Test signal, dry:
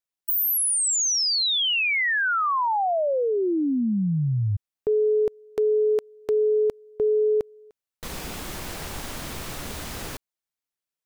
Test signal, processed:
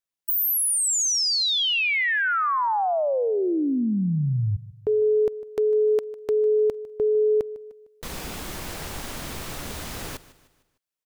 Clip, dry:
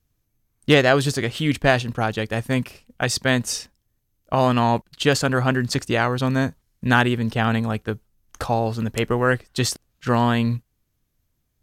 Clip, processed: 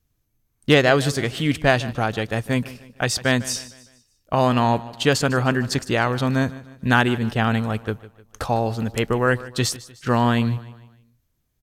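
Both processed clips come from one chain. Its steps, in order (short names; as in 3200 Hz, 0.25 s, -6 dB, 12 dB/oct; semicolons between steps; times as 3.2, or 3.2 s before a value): feedback echo 0.152 s, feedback 44%, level -18 dB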